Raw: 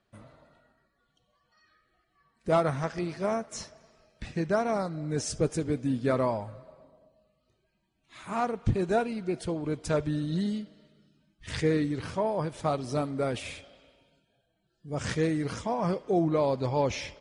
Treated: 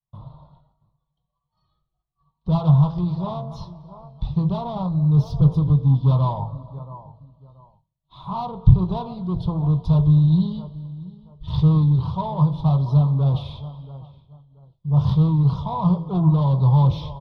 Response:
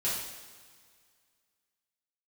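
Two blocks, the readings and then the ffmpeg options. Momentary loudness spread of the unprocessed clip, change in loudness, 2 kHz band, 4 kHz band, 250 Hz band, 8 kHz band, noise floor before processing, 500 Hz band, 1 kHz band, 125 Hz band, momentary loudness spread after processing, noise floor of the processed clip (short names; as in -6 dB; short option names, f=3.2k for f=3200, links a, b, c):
11 LU, +10.0 dB, under -15 dB, n/a, +9.0 dB, under -20 dB, -75 dBFS, -5.0 dB, +3.5 dB, +17.5 dB, 18 LU, -78 dBFS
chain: -filter_complex "[0:a]asplit=2[a][b];[b]adelay=22,volume=-12dB[c];[a][c]amix=inputs=2:normalize=0,bandreject=f=56.19:t=h:w=4,bandreject=f=112.38:t=h:w=4,bandreject=f=168.57:t=h:w=4,bandreject=f=224.76:t=h:w=4,bandreject=f=280.95:t=h:w=4,bandreject=f=337.14:t=h:w=4,bandreject=f=393.33:t=h:w=4,bandreject=f=449.52:t=h:w=4,bandreject=f=505.71:t=h:w=4,bandreject=f=561.9:t=h:w=4,bandreject=f=618.09:t=h:w=4,bandreject=f=674.28:t=h:w=4,asplit=2[d][e];[e]adelay=679,lowpass=f=1.7k:p=1,volume=-19dB,asplit=2[f][g];[g]adelay=679,lowpass=f=1.7k:p=1,volume=0.26[h];[f][h]amix=inputs=2:normalize=0[i];[d][i]amix=inputs=2:normalize=0,agate=range=-33dB:threshold=-59dB:ratio=3:detection=peak,aemphasis=mode=reproduction:type=bsi,acrossover=split=310[j][k];[k]asoftclip=type=tanh:threshold=-31dB[l];[j][l]amix=inputs=2:normalize=0,firequalizer=gain_entry='entry(100,0);entry(150,11);entry(230,-10);entry(620,-2);entry(1000,13);entry(1600,-25);entry(2300,-20);entry(3500,8);entry(7900,-28);entry(11000,-4)':delay=0.05:min_phase=1,volume=2.5dB"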